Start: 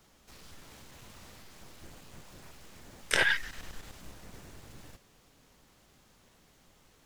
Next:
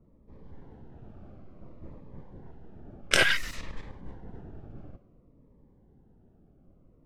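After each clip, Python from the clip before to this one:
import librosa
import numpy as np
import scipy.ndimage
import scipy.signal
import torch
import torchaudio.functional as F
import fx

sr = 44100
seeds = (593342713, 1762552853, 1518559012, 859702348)

y = fx.env_lowpass(x, sr, base_hz=390.0, full_db=-30.5)
y = fx.notch_cascade(y, sr, direction='falling', hz=0.57)
y = y * librosa.db_to_amplitude(7.0)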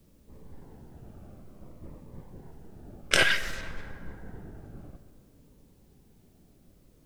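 y = fx.quant_dither(x, sr, seeds[0], bits=12, dither='triangular')
y = fx.rev_plate(y, sr, seeds[1], rt60_s=2.5, hf_ratio=0.5, predelay_ms=0, drr_db=11.5)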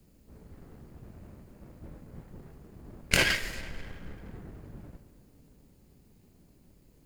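y = fx.lower_of_two(x, sr, delay_ms=0.42)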